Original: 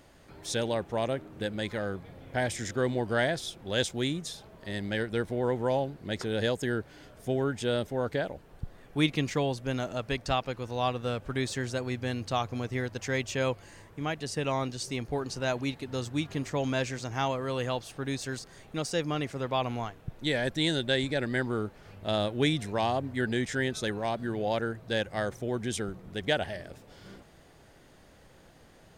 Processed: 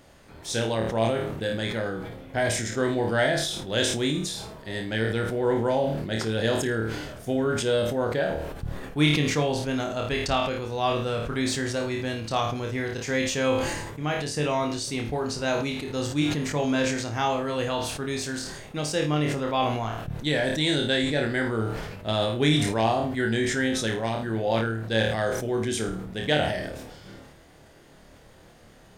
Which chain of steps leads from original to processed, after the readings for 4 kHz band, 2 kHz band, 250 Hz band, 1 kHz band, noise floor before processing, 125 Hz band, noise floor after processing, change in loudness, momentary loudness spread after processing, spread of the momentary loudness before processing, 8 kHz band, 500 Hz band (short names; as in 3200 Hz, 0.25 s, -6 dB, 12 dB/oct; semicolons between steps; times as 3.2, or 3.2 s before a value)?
+5.5 dB, +5.0 dB, +5.5 dB, +5.0 dB, -56 dBFS, +4.5 dB, -52 dBFS, +5.0 dB, 8 LU, 9 LU, +7.5 dB, +5.0 dB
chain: flutter echo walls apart 4.6 m, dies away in 0.35 s; sustainer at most 41 dB/s; gain +2 dB